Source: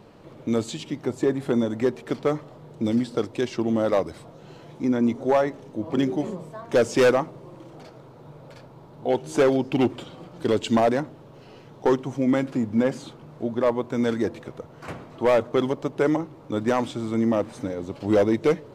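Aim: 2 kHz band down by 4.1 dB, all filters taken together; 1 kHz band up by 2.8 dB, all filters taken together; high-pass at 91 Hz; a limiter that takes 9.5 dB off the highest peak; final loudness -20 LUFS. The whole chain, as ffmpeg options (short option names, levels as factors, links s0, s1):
-af "highpass=91,equalizer=f=1000:t=o:g=5.5,equalizer=f=2000:t=o:g=-8,volume=2.82,alimiter=limit=0.376:level=0:latency=1"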